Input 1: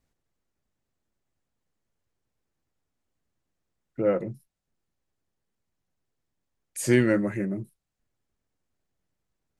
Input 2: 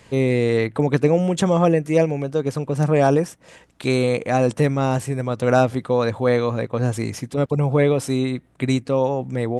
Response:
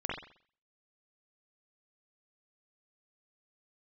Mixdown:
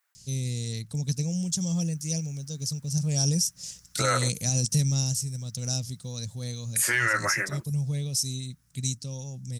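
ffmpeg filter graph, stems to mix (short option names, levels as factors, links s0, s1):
-filter_complex "[0:a]equalizer=f=6600:w=0.34:g=-8.5,dynaudnorm=f=220:g=13:m=4.73,highpass=f=1400:t=q:w=2,volume=0.944[s0];[1:a]firequalizer=gain_entry='entry(170,0);entry(300,-19);entry(1200,-25);entry(5400,15);entry(8200,4)':delay=0.05:min_phase=1,adelay=150,volume=0.531,afade=t=in:st=3.01:d=0.41:silence=0.446684,afade=t=out:st=4.84:d=0.32:silence=0.398107[s1];[s0][s1]amix=inputs=2:normalize=0,highshelf=f=6300:g=11.5,acontrast=68,alimiter=limit=0.178:level=0:latency=1:release=90"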